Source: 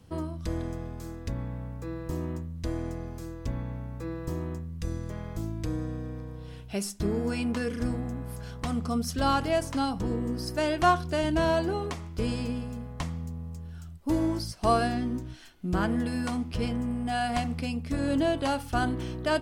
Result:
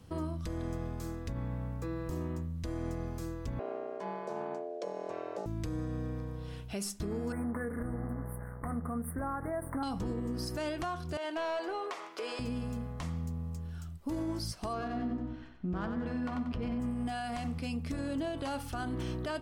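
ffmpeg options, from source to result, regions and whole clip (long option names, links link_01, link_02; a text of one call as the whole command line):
ffmpeg -i in.wav -filter_complex "[0:a]asettb=1/sr,asplit=3[link_01][link_02][link_03];[link_01]atrim=end=3.594[link_04];[link_02]atrim=start=3.59:end=5.46,asetpts=PTS-STARTPTS,afade=type=in:duration=0.004:curve=qsin,afade=type=out:start_time=1.866:duration=0.004:curve=qsin,aeval=exprs='val(0)*sin(2*PI*520*n/s)':channel_layout=same,highpass=190,lowpass=6100[link_05];[link_03]atrim=start=5.456[link_06];[link_04][link_05]acrossfade=duration=0.004:curve1=hsin:curve2=qsin[link_07];[link_07][link_06]acrossfade=duration=0.004:curve1=qsin:curve2=hsin,asettb=1/sr,asplit=3[link_08][link_09][link_10];[link_08]atrim=end=7.324[link_11];[link_09]atrim=start=7.32:end=9.83,asetpts=PTS-STARTPTS,afade=type=in:duration=0.004:curve=qsin,afade=type=out:start_time=2.506:duration=0.004:curve=qsin,bandreject=frequency=50:width_type=h:width=6,bandreject=frequency=100:width_type=h:width=6,bandreject=frequency=150:width_type=h:width=6,bandreject=frequency=200:width_type=h:width=6,bandreject=frequency=250:width_type=h:width=6,bandreject=frequency=300:width_type=h:width=6,bandreject=frequency=350:width_type=h:width=6,bandreject=frequency=400:width_type=h:width=6,bandreject=frequency=450:width_type=h:width=6,aeval=exprs='sgn(val(0))*max(abs(val(0))-0.00447,0)':channel_layout=same,asuperstop=centerf=4400:order=20:qfactor=0.65[link_12];[link_10]atrim=start=9.826[link_13];[link_11][link_12]acrossfade=duration=0.004:curve1=hsin:curve2=qsin[link_14];[link_14][link_13]acrossfade=duration=0.004:curve1=qsin:curve2=hsin,asettb=1/sr,asplit=3[link_15][link_16][link_17];[link_15]atrim=end=11.174[link_18];[link_16]atrim=start=11.17:end=12.39,asetpts=PTS-STARTPTS,afade=type=in:duration=0.004:curve=qsin,afade=type=out:start_time=1.216:duration=0.004:curve=qsin,highpass=frequency=370:width=0.5412,highpass=frequency=370:width=1.3066,asplit=2[link_19][link_20];[link_20]highpass=frequency=720:poles=1,volume=14dB,asoftclip=type=tanh:threshold=-16dB[link_21];[link_19][link_21]amix=inputs=2:normalize=0,lowpass=frequency=2500:poles=1,volume=-6dB,acompressor=threshold=-40dB:ratio=2:attack=3.2:release=140:knee=1:detection=peak[link_22];[link_17]atrim=start=12.386[link_23];[link_18][link_22]acrossfade=duration=0.004:curve1=hsin:curve2=qsin[link_24];[link_24][link_23]acrossfade=duration=0.004:curve1=qsin:curve2=hsin,asettb=1/sr,asplit=3[link_25][link_26][link_27];[link_25]atrim=end=14.734[link_28];[link_26]atrim=start=14.73:end=16.8,asetpts=PTS-STARTPTS,afade=type=in:duration=0.004:curve=qsin,afade=type=out:start_time=2.066:duration=0.004:curve=qsin,adynamicsmooth=sensitivity=2:basefreq=1900,aecho=1:1:93|186|279|372:0.422|0.16|0.0609|0.0231,atrim=end_sample=91287[link_29];[link_27]atrim=start=16.796[link_30];[link_28][link_29]acrossfade=duration=0.004:curve1=hsin:curve2=qsin[link_31];[link_31][link_30]acrossfade=duration=0.004:curve1=qsin:curve2=hsin,equalizer=frequency=1200:width=6.3:gain=3,acompressor=threshold=-30dB:ratio=3,alimiter=level_in=3.5dB:limit=-24dB:level=0:latency=1:release=54,volume=-3.5dB" out.wav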